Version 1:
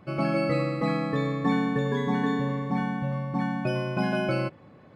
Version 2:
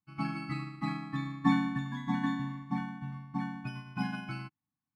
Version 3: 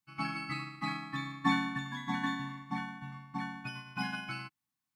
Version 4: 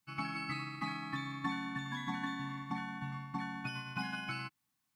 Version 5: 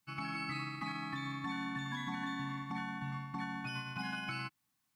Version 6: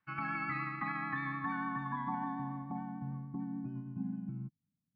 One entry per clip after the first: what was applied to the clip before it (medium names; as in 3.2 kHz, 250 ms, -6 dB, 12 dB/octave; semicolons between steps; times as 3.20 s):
Chebyshev band-stop 300–780 Hz, order 3; upward expansion 2.5:1, over -49 dBFS; trim +1.5 dB
tilt shelf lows -6 dB, about 780 Hz
compression 4:1, threshold -43 dBFS, peak gain reduction 16.5 dB; trim +6 dB
peak limiter -31.5 dBFS, peak gain reduction 7.5 dB; trim +1.5 dB
vibrato 6.8 Hz 21 cents; low-pass sweep 1.7 kHz -> 190 Hz, 1.27–4.47 s